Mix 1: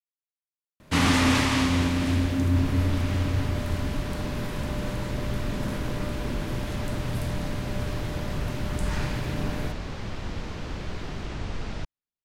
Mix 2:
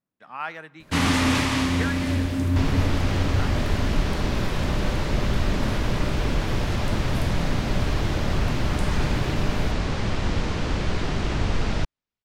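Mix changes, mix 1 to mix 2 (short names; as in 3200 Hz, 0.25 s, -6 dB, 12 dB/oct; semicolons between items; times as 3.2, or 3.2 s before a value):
speech: unmuted; second sound +9.0 dB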